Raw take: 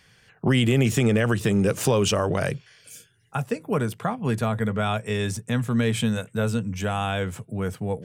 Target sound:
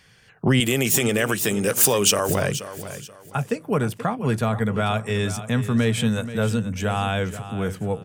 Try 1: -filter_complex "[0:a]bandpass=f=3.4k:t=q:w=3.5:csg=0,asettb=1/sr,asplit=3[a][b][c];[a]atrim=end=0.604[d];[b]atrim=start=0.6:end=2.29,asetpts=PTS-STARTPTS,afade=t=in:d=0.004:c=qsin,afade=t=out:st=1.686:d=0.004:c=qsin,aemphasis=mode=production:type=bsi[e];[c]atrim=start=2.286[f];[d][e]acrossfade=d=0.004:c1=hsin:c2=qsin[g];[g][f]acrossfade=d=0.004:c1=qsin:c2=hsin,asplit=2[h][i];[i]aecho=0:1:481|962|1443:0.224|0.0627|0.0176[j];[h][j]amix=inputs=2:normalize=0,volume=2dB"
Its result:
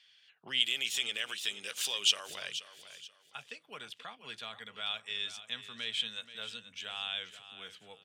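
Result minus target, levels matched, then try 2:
4000 Hz band +9.5 dB
-filter_complex "[0:a]asettb=1/sr,asplit=3[a][b][c];[a]atrim=end=0.604[d];[b]atrim=start=0.6:end=2.29,asetpts=PTS-STARTPTS,afade=t=in:d=0.004:c=qsin,afade=t=out:st=1.686:d=0.004:c=qsin,aemphasis=mode=production:type=bsi[e];[c]atrim=start=2.286[f];[d][e]acrossfade=d=0.004:c1=hsin:c2=qsin[g];[g][f]acrossfade=d=0.004:c1=qsin:c2=hsin,asplit=2[h][i];[i]aecho=0:1:481|962|1443:0.224|0.0627|0.0176[j];[h][j]amix=inputs=2:normalize=0,volume=2dB"

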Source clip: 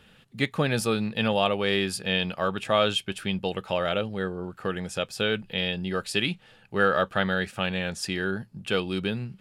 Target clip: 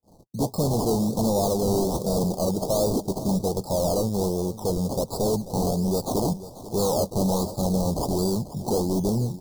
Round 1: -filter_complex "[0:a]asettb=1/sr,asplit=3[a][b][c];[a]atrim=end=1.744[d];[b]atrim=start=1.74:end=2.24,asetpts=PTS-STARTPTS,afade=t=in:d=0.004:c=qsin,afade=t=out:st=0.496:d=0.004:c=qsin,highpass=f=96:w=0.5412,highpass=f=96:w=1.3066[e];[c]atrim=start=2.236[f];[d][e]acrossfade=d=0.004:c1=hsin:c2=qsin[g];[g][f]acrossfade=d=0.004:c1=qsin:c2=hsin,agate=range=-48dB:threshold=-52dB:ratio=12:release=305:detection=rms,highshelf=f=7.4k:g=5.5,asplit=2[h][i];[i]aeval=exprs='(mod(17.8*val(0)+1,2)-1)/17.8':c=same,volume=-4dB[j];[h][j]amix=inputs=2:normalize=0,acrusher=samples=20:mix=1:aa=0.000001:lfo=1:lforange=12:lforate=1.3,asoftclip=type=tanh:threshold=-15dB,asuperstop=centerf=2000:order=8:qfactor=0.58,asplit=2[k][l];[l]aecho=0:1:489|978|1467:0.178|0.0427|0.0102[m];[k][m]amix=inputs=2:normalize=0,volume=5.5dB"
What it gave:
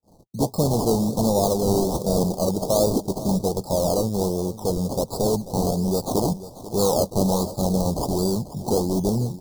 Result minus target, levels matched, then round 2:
soft clip: distortion -8 dB
-filter_complex "[0:a]asettb=1/sr,asplit=3[a][b][c];[a]atrim=end=1.744[d];[b]atrim=start=1.74:end=2.24,asetpts=PTS-STARTPTS,afade=t=in:d=0.004:c=qsin,afade=t=out:st=0.496:d=0.004:c=qsin,highpass=f=96:w=0.5412,highpass=f=96:w=1.3066[e];[c]atrim=start=2.236[f];[d][e]acrossfade=d=0.004:c1=hsin:c2=qsin[g];[g][f]acrossfade=d=0.004:c1=qsin:c2=hsin,agate=range=-48dB:threshold=-52dB:ratio=12:release=305:detection=rms,highshelf=f=7.4k:g=5.5,asplit=2[h][i];[i]aeval=exprs='(mod(17.8*val(0)+1,2)-1)/17.8':c=same,volume=-4dB[j];[h][j]amix=inputs=2:normalize=0,acrusher=samples=20:mix=1:aa=0.000001:lfo=1:lforange=12:lforate=1.3,asoftclip=type=tanh:threshold=-22.5dB,asuperstop=centerf=2000:order=8:qfactor=0.58,asplit=2[k][l];[l]aecho=0:1:489|978|1467:0.178|0.0427|0.0102[m];[k][m]amix=inputs=2:normalize=0,volume=5.5dB"

